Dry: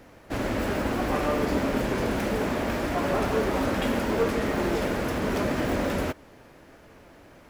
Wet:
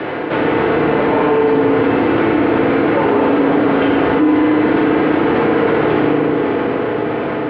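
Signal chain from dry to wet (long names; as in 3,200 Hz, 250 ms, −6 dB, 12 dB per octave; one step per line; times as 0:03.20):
single-sideband voice off tune −150 Hz 460–3,500 Hz
low-shelf EQ 470 Hz +7 dB
on a send: feedback delay with all-pass diffusion 519 ms, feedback 48%, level −10 dB
on the sum: feedback delay network reverb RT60 2.3 s, low-frequency decay 1.2×, high-frequency decay 0.5×, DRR −3 dB
envelope flattener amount 70%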